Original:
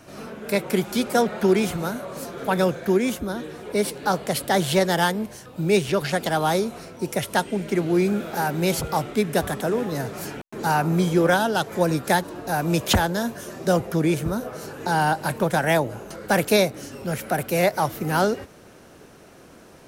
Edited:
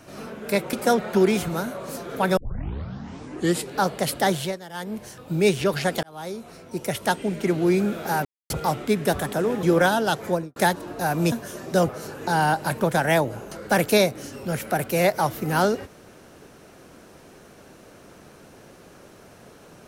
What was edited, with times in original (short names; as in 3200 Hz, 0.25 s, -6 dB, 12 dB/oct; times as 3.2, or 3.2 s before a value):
0.73–1.01 cut
2.65 tape start 1.36 s
4.53–5.35 dip -18.5 dB, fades 0.34 s linear
6.31–7.72 fade in equal-power
8.53–8.78 mute
9.91–11.11 cut
11.71–12.04 studio fade out
12.8–13.25 cut
13.82–14.48 cut